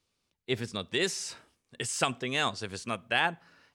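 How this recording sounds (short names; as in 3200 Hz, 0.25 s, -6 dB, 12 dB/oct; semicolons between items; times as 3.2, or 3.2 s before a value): noise floor -80 dBFS; spectral tilt -2.5 dB/oct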